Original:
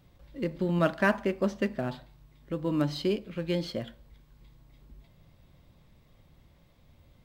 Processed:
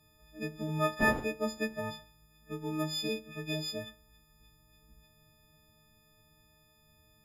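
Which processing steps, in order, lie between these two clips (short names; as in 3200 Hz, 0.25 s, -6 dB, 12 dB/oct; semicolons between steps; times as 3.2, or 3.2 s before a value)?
frequency quantiser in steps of 6 st; 0.99–1.73 wind noise 390 Hz -39 dBFS; gain -7 dB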